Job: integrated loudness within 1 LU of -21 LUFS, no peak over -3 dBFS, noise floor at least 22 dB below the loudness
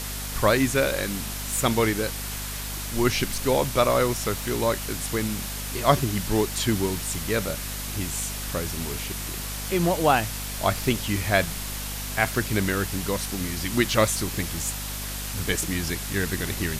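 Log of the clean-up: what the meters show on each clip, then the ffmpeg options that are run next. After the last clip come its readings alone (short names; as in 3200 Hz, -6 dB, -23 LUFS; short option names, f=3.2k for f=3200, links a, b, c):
hum 50 Hz; harmonics up to 250 Hz; hum level -33 dBFS; noise floor -32 dBFS; noise floor target -48 dBFS; loudness -25.5 LUFS; peak -3.0 dBFS; loudness target -21.0 LUFS
-> -af "bandreject=f=50:t=h:w=4,bandreject=f=100:t=h:w=4,bandreject=f=150:t=h:w=4,bandreject=f=200:t=h:w=4,bandreject=f=250:t=h:w=4"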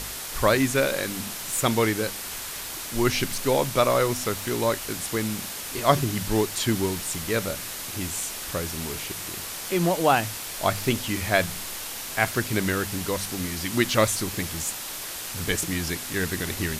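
hum none; noise floor -35 dBFS; noise floor target -48 dBFS
-> -af "afftdn=nr=13:nf=-35"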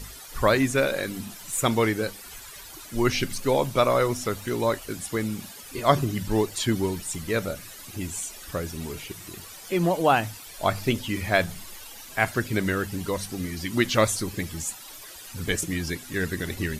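noise floor -43 dBFS; noise floor target -49 dBFS
-> -af "afftdn=nr=6:nf=-43"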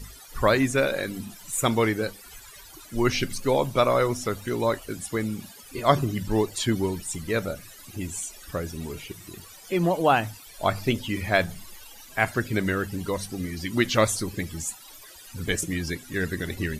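noise floor -47 dBFS; noise floor target -49 dBFS
-> -af "afftdn=nr=6:nf=-47"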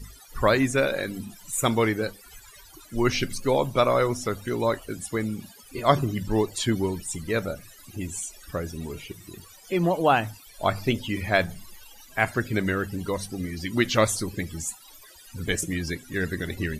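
noise floor -50 dBFS; loudness -26.5 LUFS; peak -3.5 dBFS; loudness target -21.0 LUFS
-> -af "volume=5.5dB,alimiter=limit=-3dB:level=0:latency=1"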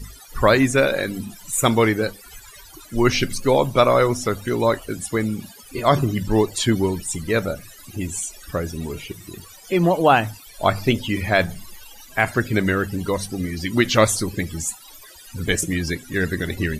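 loudness -21.0 LUFS; peak -3.0 dBFS; noise floor -44 dBFS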